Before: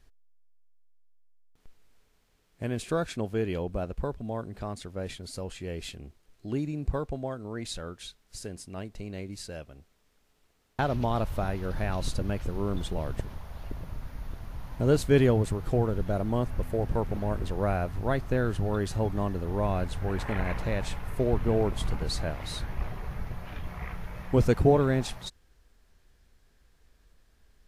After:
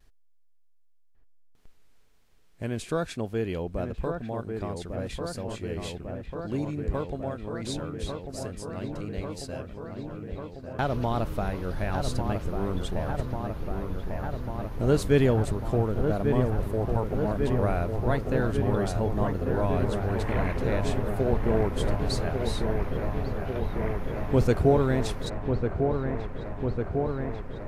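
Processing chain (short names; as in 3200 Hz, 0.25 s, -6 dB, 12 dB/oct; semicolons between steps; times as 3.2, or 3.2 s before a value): dark delay 1.147 s, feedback 80%, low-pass 1900 Hz, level -5.5 dB; vibrato 1 Hz 35 cents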